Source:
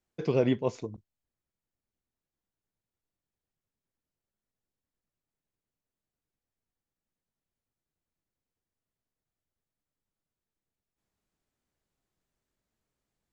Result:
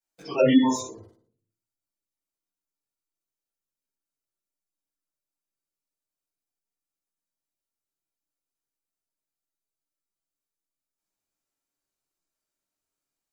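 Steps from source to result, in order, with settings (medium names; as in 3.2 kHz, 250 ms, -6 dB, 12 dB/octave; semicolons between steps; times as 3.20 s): simulated room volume 550 m³, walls furnished, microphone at 7.7 m; in parallel at -11.5 dB: bit crusher 5-bit; on the sum: tone controls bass -15 dB, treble +10 dB; on a send: flutter echo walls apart 10 m, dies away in 0.48 s; on the sum: spectral noise reduction 16 dB; spectral gate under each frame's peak -30 dB strong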